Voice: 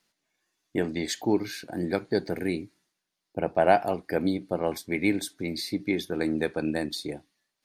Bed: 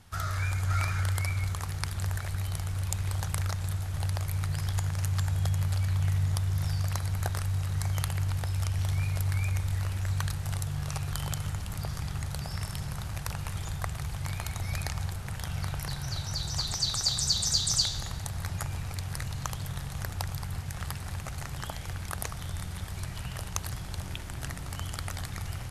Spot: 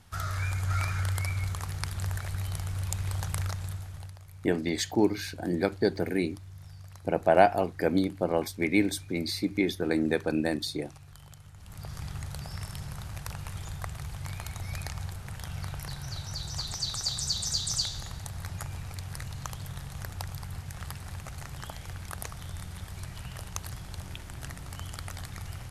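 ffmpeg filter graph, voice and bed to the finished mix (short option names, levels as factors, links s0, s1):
-filter_complex "[0:a]adelay=3700,volume=1.06[s0];[1:a]volume=4.47,afade=t=out:st=3.42:d=0.74:silence=0.149624,afade=t=in:st=11.54:d=0.49:silence=0.199526[s1];[s0][s1]amix=inputs=2:normalize=0"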